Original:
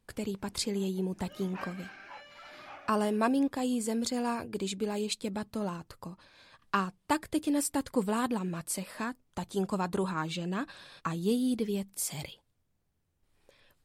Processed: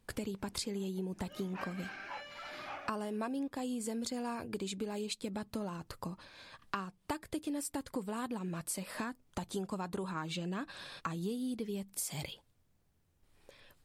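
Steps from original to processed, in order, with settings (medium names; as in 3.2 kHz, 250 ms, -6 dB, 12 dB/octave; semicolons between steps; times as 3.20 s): compression 6:1, threshold -39 dBFS, peak gain reduction 15.5 dB; trim +3.5 dB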